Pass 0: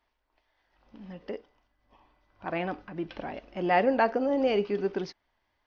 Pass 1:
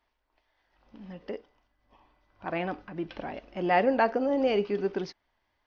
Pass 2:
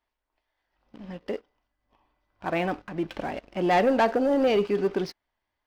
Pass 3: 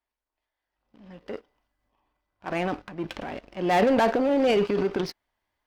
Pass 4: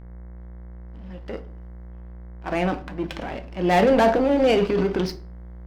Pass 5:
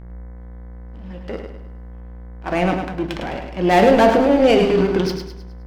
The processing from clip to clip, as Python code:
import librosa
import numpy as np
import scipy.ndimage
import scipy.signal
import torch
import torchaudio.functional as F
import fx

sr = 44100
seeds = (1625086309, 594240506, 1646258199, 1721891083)

y1 = x
y2 = fx.leveller(y1, sr, passes=2)
y2 = F.gain(torch.from_numpy(y2), -2.5).numpy()
y3 = fx.cheby_harmonics(y2, sr, harmonics=(7,), levels_db=(-22,), full_scale_db=-13.5)
y3 = fx.transient(y3, sr, attack_db=-3, sustain_db=9)
y4 = fx.dmg_buzz(y3, sr, base_hz=60.0, harmonics=37, level_db=-44.0, tilt_db=-8, odd_only=False)
y4 = fx.room_shoebox(y4, sr, seeds[0], volume_m3=340.0, walls='furnished', distance_m=0.68)
y4 = F.gain(torch.from_numpy(y4), 2.5).numpy()
y5 = fx.echo_feedback(y4, sr, ms=104, feedback_pct=41, wet_db=-6.5)
y5 = F.gain(torch.from_numpy(y5), 4.0).numpy()